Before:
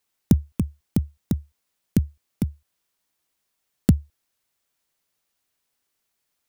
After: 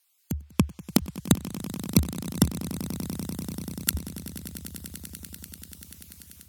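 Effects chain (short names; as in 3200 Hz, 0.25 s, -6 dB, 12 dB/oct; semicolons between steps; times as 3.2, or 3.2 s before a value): random spectral dropouts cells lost 21%; treble ducked by the level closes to 2900 Hz, closed at -20 dBFS; tilt +3.5 dB/oct; limiter -15 dBFS, peak gain reduction 10 dB; AGC gain up to 16 dB; swelling echo 97 ms, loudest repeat 8, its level -17.5 dB; dynamic EQ 1000 Hz, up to +5 dB, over -49 dBFS, Q 1.4; gain -1 dB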